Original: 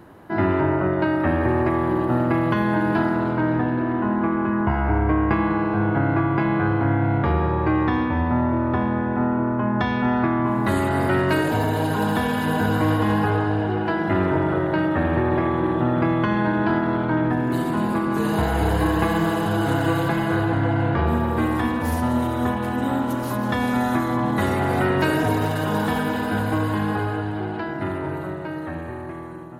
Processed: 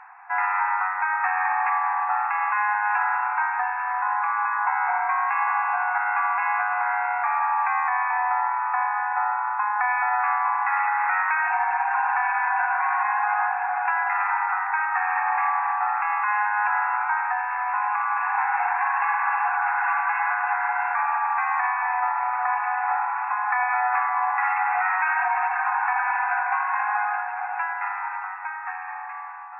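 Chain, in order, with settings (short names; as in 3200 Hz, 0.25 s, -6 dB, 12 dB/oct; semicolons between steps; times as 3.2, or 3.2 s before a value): FFT band-pass 710–2700 Hz; reverse; upward compressor, threshold -41 dBFS; reverse; limiter -20 dBFS, peak gain reduction 7.5 dB; gain +6 dB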